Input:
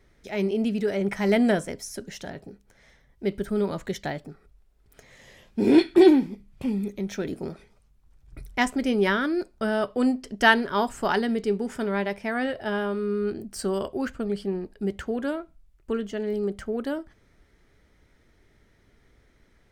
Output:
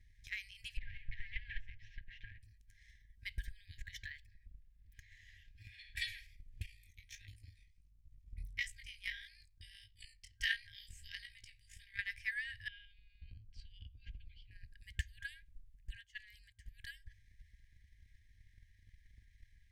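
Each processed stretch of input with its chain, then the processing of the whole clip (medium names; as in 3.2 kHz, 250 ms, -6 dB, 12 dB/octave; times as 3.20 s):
0.77–2.43 s: comb filter that takes the minimum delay 7.4 ms + low-pass 2.8 kHz 24 dB/octave + dynamic bell 1.5 kHz, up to -7 dB, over -44 dBFS, Q 0.79
3.44–5.97 s: peaking EQ 9.4 kHz -9 dB 1.5 oct + compression 10:1, threshold -26 dBFS
6.66–11.99 s: AM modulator 58 Hz, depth 40% + band-stop 1.7 kHz, Q 6.1 + chorus 1.5 Hz, delay 18.5 ms, depth 6.2 ms
12.68–14.51 s: low-pass 3.2 kHz 24 dB/octave + static phaser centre 740 Hz, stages 4
15.95–16.66 s: high-pass 46 Hz 24 dB/octave + gate -30 dBFS, range -17 dB + upward compressor, threshold -42 dBFS
whole clip: FFT band-reject 110–1600 Hz; tilt shelf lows +4 dB, about 1.2 kHz; transient shaper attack +8 dB, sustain +4 dB; trim -7.5 dB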